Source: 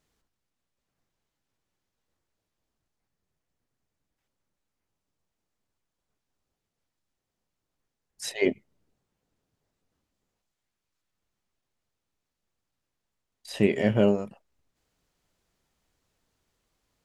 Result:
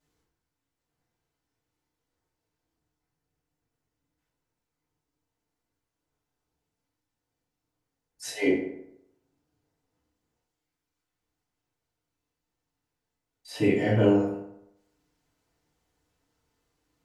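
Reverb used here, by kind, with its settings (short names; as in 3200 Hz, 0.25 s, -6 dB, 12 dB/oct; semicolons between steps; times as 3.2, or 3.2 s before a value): FDN reverb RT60 0.8 s, low-frequency decay 0.95×, high-frequency decay 0.55×, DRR -9 dB; gain -9 dB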